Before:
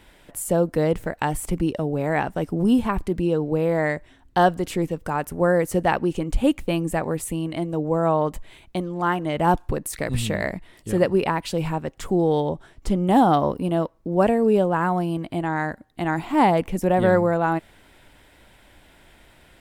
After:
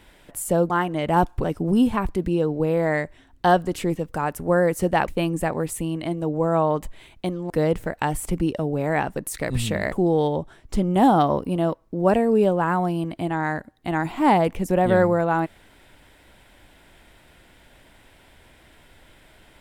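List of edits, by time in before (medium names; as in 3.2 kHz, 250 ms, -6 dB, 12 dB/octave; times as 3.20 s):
0.70–2.36 s: swap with 9.01–9.75 s
6.00–6.59 s: delete
10.51–12.05 s: delete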